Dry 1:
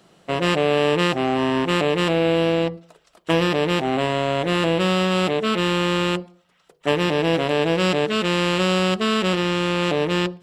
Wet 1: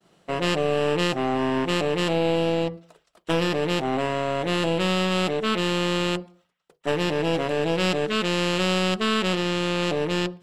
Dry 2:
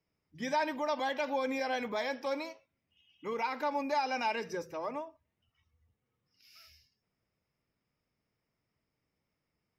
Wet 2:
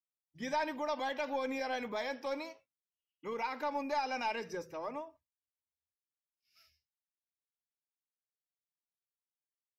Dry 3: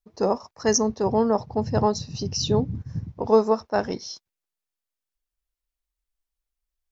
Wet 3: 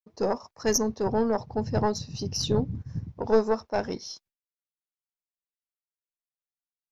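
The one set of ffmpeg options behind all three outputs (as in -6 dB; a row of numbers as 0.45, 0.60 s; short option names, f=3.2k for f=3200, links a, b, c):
-af "aeval=exprs='(tanh(2.82*val(0)+0.6)-tanh(0.6))/2.82':c=same,agate=range=-33dB:threshold=-54dB:ratio=3:detection=peak"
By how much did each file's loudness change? -3.5, -3.0, -4.0 LU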